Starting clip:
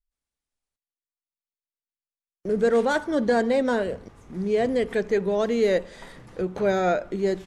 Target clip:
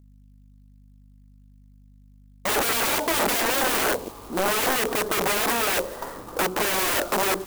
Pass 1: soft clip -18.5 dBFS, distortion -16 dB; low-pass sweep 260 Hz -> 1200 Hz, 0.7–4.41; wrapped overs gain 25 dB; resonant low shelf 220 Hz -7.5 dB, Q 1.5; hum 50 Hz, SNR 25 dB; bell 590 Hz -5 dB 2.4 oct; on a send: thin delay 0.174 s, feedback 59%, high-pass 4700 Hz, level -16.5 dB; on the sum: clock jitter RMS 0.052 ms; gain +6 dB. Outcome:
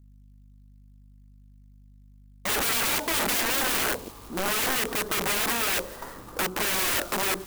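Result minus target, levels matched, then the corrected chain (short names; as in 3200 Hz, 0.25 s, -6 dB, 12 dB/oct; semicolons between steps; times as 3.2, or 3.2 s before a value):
500 Hz band -4.5 dB
soft clip -18.5 dBFS, distortion -16 dB; low-pass sweep 260 Hz -> 1200 Hz, 0.7–4.41; wrapped overs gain 25 dB; resonant low shelf 220 Hz -7.5 dB, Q 1.5; hum 50 Hz, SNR 25 dB; bell 590 Hz +2.5 dB 2.4 oct; on a send: thin delay 0.174 s, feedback 59%, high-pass 4700 Hz, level -16.5 dB; on the sum: clock jitter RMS 0.052 ms; gain +6 dB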